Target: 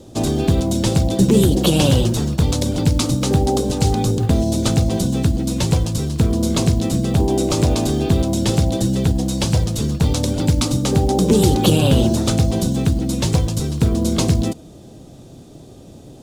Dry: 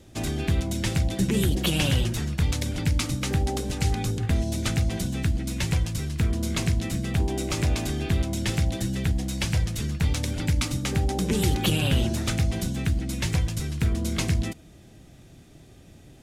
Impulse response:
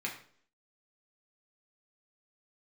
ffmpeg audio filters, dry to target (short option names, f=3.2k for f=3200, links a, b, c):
-af "equalizer=f=125:t=o:w=1:g=4,equalizer=f=250:t=o:w=1:g=6,equalizer=f=500:t=o:w=1:g=9,equalizer=f=1k:t=o:w=1:g=6,equalizer=f=2k:t=o:w=1:g=-9,equalizer=f=4k:t=o:w=1:g=5,equalizer=f=8k:t=o:w=1:g=4,acrusher=bits=9:mode=log:mix=0:aa=0.000001,volume=3.5dB"